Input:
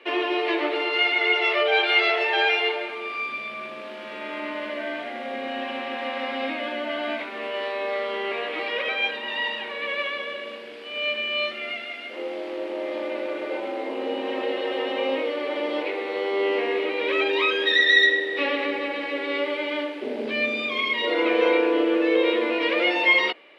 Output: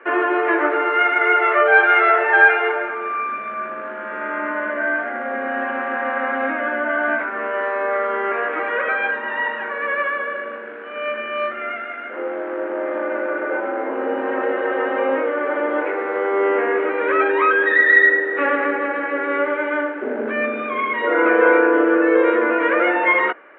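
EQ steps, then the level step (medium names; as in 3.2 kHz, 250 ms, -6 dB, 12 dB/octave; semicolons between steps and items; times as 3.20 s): high-pass 160 Hz; resonant low-pass 1.5 kHz, resonance Q 5.4; distance through air 380 m; +5.5 dB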